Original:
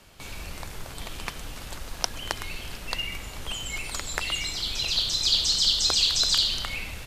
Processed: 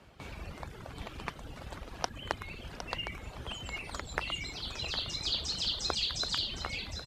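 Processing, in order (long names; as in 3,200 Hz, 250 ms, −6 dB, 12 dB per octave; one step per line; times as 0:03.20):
high-pass filter 49 Hz
reverb reduction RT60 0.97 s
low-pass filter 1,400 Hz 6 dB per octave
on a send: single-tap delay 760 ms −9.5 dB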